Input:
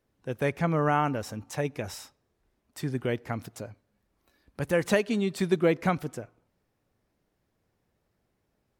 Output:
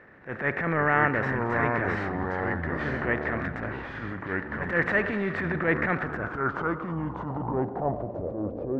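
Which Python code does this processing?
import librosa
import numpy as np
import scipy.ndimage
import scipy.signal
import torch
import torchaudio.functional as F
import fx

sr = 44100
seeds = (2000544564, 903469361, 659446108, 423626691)

y = fx.bin_compress(x, sr, power=0.6)
y = fx.transient(y, sr, attack_db=-12, sustain_db=3)
y = fx.echo_pitch(y, sr, ms=420, semitones=-4, count=3, db_per_echo=-3.0)
y = fx.filter_sweep_lowpass(y, sr, from_hz=1800.0, to_hz=530.0, start_s=5.93, end_s=8.54, q=5.2)
y = y * 10.0 ** (-3.5 / 20.0)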